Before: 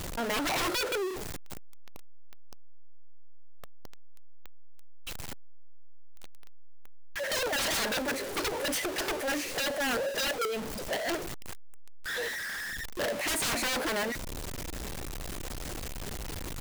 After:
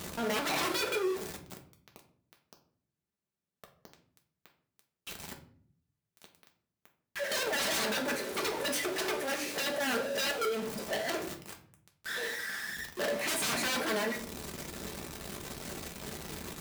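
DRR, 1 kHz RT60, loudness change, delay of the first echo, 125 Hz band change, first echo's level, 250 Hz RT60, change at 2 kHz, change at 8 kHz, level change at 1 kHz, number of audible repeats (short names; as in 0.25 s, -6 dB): 2.0 dB, 0.50 s, -1.5 dB, none, -4.0 dB, none, 0.95 s, -1.5 dB, -2.0 dB, -1.5 dB, none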